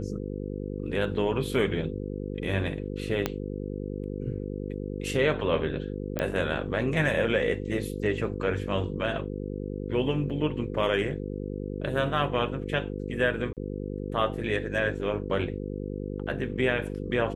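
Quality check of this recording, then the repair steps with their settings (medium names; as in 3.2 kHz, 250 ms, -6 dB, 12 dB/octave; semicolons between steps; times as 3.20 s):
buzz 50 Hz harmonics 10 -34 dBFS
3.26 s: pop -11 dBFS
6.19 s: pop -14 dBFS
13.53–13.57 s: dropout 38 ms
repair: de-click; de-hum 50 Hz, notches 10; interpolate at 13.53 s, 38 ms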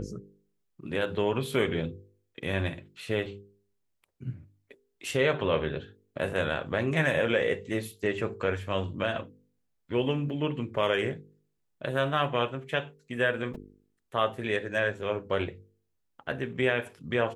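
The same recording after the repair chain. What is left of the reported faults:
3.26 s: pop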